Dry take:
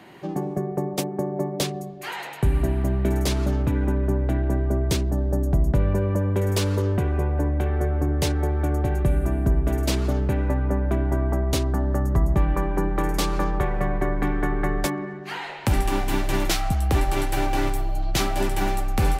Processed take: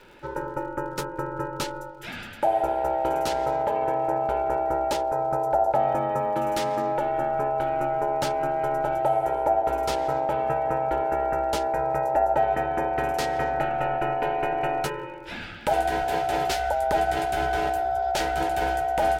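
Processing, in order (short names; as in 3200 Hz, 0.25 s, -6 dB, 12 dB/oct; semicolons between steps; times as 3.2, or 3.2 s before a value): crackle 130/s -42 dBFS; ring modulator 720 Hz; Butterworth band-stop 1100 Hz, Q 4.6; high shelf 6800 Hz -6 dB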